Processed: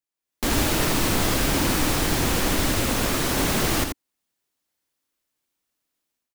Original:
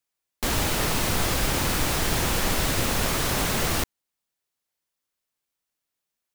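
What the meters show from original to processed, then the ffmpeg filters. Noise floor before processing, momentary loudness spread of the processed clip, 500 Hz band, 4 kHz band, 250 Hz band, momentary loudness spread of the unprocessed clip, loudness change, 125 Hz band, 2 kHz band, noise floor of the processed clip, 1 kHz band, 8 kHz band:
-84 dBFS, 4 LU, +3.0 dB, +1.5 dB, +5.5 dB, 3 LU, +2.0 dB, +1.5 dB, +1.5 dB, under -85 dBFS, +1.5 dB, +1.5 dB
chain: -filter_complex "[0:a]equalizer=f=290:t=o:w=0.65:g=6.5,dynaudnorm=f=110:g=5:m=3.76,asplit=2[s0][s1];[s1]aecho=0:1:83:0.501[s2];[s0][s2]amix=inputs=2:normalize=0,volume=0.376"

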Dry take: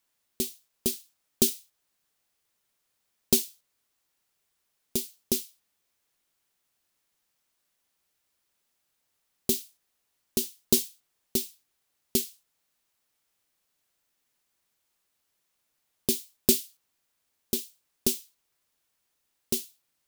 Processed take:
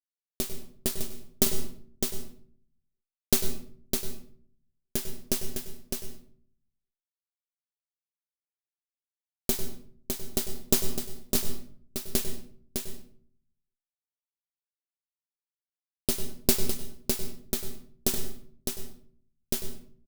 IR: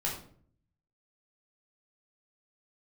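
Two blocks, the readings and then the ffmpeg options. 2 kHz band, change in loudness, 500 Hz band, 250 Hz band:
+5.5 dB, -3.0 dB, -0.5 dB, -1.0 dB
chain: -filter_complex "[0:a]aeval=exprs='max(val(0),0)':c=same,acrusher=bits=7:mix=0:aa=0.000001,aecho=1:1:607:0.531,asplit=2[s0][s1];[1:a]atrim=start_sample=2205,adelay=97[s2];[s1][s2]afir=irnorm=-1:irlink=0,volume=0.211[s3];[s0][s3]amix=inputs=2:normalize=0,volume=1.26"

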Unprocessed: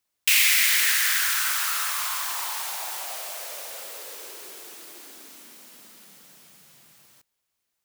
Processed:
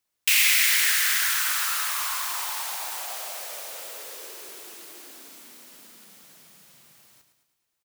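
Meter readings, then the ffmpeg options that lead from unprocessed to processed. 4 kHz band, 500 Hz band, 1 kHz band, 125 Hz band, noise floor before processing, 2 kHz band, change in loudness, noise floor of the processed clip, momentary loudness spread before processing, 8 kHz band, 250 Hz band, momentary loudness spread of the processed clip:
-0.5 dB, -0.5 dB, 0.0 dB, no reading, -80 dBFS, -0.5 dB, -0.5 dB, -79 dBFS, 22 LU, -0.5 dB, 0.0 dB, 22 LU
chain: -af "aecho=1:1:108|216|324|432|540|648:0.355|0.192|0.103|0.0559|0.0302|0.0163,volume=0.891"

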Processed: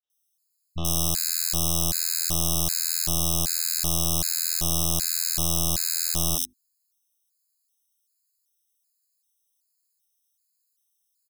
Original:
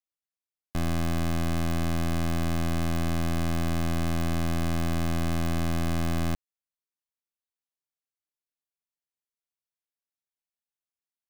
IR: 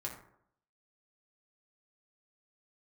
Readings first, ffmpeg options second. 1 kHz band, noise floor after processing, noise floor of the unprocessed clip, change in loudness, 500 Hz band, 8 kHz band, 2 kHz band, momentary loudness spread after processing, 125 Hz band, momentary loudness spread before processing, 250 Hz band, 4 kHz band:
-3.0 dB, -75 dBFS, under -85 dBFS, +6.0 dB, -3.0 dB, +20.0 dB, -4.0 dB, 2 LU, -3.5 dB, 1 LU, -6.0 dB, +12.0 dB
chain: -filter_complex "[0:a]bandreject=f=50:t=h:w=6,bandreject=f=100:t=h:w=6,bandreject=f=150:t=h:w=6,bandreject=f=200:t=h:w=6,bandreject=f=250:t=h:w=6,bandreject=f=300:t=h:w=6,bandreject=f=350:t=h:w=6,acrossover=split=200|3300[s0][s1][s2];[s1]adelay=30[s3];[s2]adelay=100[s4];[s0][s3][s4]amix=inputs=3:normalize=0,aexciter=amount=12.5:drive=3.6:freq=3200,afftfilt=real='re*gt(sin(2*PI*1.3*pts/sr)*(1-2*mod(floor(b*sr/1024/1300),2)),0)':imag='im*gt(sin(2*PI*1.3*pts/sr)*(1-2*mod(floor(b*sr/1024/1300),2)),0)':win_size=1024:overlap=0.75"

